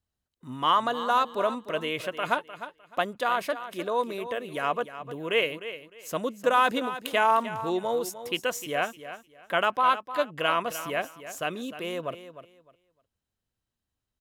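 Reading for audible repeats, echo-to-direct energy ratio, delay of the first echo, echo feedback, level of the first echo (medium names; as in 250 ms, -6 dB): 2, -12.5 dB, 304 ms, 22%, -12.5 dB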